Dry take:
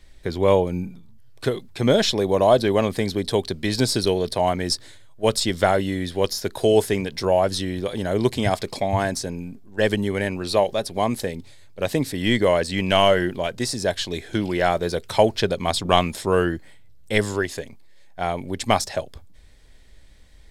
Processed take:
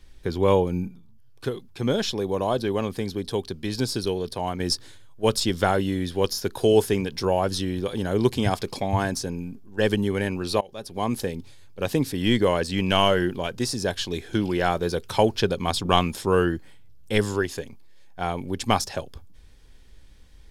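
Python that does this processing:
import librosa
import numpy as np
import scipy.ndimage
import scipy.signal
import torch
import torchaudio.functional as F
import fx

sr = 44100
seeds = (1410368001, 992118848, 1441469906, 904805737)

y = fx.edit(x, sr, fx.clip_gain(start_s=0.88, length_s=3.72, db=-4.5),
    fx.fade_in_from(start_s=10.61, length_s=0.56, floor_db=-24.0), tone=tone)
y = fx.graphic_eq_31(y, sr, hz=(630, 2000, 4000, 8000), db=(-8, -7, -4, -5))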